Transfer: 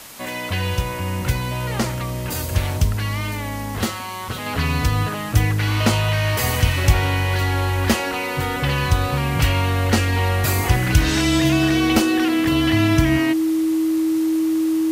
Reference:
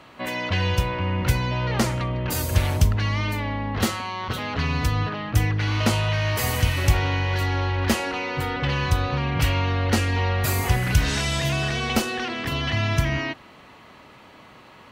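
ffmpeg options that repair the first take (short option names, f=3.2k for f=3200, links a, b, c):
-af "bandreject=f=320:w=30,afwtdn=0.011,asetnsamples=n=441:p=0,asendcmd='4.46 volume volume -3.5dB',volume=0dB"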